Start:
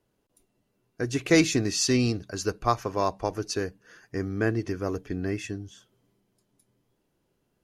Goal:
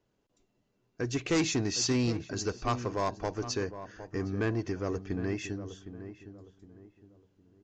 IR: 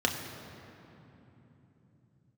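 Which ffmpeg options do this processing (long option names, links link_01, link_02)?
-filter_complex "[0:a]aresample=16000,asoftclip=type=tanh:threshold=-20.5dB,aresample=44100,asplit=2[link_01][link_02];[link_02]adelay=761,lowpass=frequency=1200:poles=1,volume=-11dB,asplit=2[link_03][link_04];[link_04]adelay=761,lowpass=frequency=1200:poles=1,volume=0.34,asplit=2[link_05][link_06];[link_06]adelay=761,lowpass=frequency=1200:poles=1,volume=0.34,asplit=2[link_07][link_08];[link_08]adelay=761,lowpass=frequency=1200:poles=1,volume=0.34[link_09];[link_01][link_03][link_05][link_07][link_09]amix=inputs=5:normalize=0,volume=-2dB"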